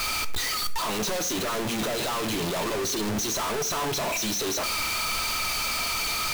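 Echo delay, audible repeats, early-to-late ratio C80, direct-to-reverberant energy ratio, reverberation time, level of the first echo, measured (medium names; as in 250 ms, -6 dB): no echo, no echo, 18.0 dB, 10.0 dB, 0.65 s, no echo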